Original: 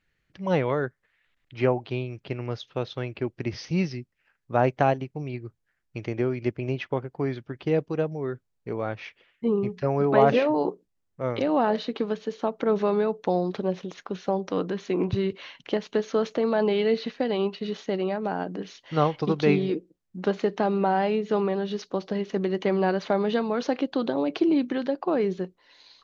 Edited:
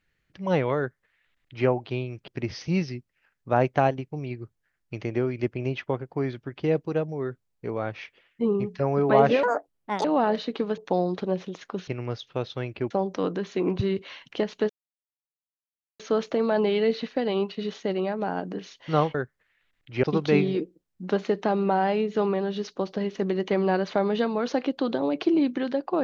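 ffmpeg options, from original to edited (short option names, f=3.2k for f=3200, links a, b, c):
-filter_complex "[0:a]asplit=10[a][b][c][d][e][f][g][h][i][j];[a]atrim=end=2.282[k];[b]atrim=start=3.308:end=10.464[l];[c]atrim=start=10.46:end=11.45,asetpts=PTS-STARTPTS,asetrate=71001,aresample=44100,atrim=end_sample=27117,asetpts=PTS-STARTPTS[m];[d]atrim=start=11.446:end=12.182[n];[e]atrim=start=13.138:end=14.242[o];[f]atrim=start=2.278:end=3.312[p];[g]atrim=start=14.238:end=16.03,asetpts=PTS-STARTPTS,afade=t=out:st=1.788:d=0.004:c=hsin,apad=pad_dur=1.3[q];[h]atrim=start=16.03:end=19.182,asetpts=PTS-STARTPTS,afade=t=in:d=0.004:c=hsin[r];[i]atrim=start=0.778:end=1.672[s];[j]atrim=start=19.178[t];[k][l]acrossfade=d=0.004:c1=hsin:c2=hsin[u];[u][m]acrossfade=d=0.004:c1=hsin:c2=hsin[v];[v][n]acrossfade=d=0.004:c1=hsin:c2=hsin[w];[w][o]acrossfade=d=0.004:c1=hsin:c2=hsin[x];[x][p]acrossfade=d=0.004:c1=hsin:c2=hsin[y];[q][r]concat=n=2:v=0:a=1[z];[y][z]acrossfade=d=0.004:c1=hsin:c2=hsin[aa];[aa][s]acrossfade=d=0.004:c1=hsin:c2=hsin[ab];[ab][t]acrossfade=d=0.004:c1=hsin:c2=hsin"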